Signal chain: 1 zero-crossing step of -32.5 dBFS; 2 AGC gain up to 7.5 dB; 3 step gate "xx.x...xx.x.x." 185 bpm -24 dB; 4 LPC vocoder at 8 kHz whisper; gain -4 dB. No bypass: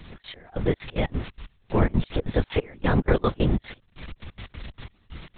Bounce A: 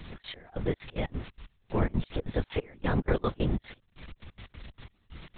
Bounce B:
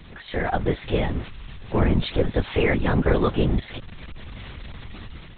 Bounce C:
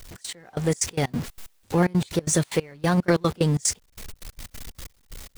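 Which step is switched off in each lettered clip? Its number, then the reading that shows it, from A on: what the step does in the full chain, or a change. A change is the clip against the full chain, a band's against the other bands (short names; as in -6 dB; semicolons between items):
2, loudness change -6.5 LU; 3, 2 kHz band +2.0 dB; 4, 4 kHz band +3.5 dB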